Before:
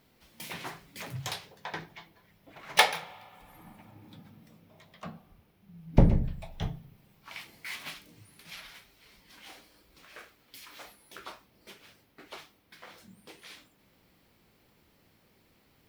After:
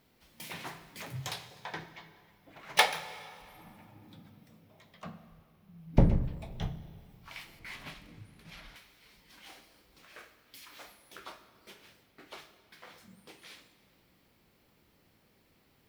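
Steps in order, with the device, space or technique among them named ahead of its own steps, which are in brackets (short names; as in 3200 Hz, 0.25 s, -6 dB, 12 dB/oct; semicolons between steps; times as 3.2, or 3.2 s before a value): saturated reverb return (on a send at -10.5 dB: reverb RT60 1.9 s, pre-delay 20 ms + soft clip -28 dBFS, distortion -5 dB); 7.59–8.76 on the sum: tilt -2.5 dB/oct; gain -2.5 dB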